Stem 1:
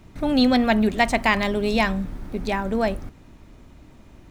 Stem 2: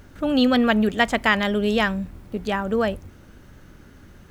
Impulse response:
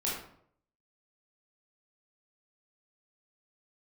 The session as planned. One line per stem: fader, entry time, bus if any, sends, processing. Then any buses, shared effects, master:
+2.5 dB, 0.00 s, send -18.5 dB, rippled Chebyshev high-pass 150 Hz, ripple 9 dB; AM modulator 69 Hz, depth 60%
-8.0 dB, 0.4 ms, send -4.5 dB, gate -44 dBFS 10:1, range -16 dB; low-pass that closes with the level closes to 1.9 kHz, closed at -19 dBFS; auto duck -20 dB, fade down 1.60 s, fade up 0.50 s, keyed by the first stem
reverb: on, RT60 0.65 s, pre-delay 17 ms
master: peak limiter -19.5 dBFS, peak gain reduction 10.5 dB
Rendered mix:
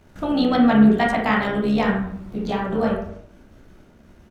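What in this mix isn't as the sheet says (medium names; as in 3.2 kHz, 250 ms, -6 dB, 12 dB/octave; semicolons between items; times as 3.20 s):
stem 2 -8.0 dB -> -1.0 dB; master: missing peak limiter -19.5 dBFS, peak gain reduction 10.5 dB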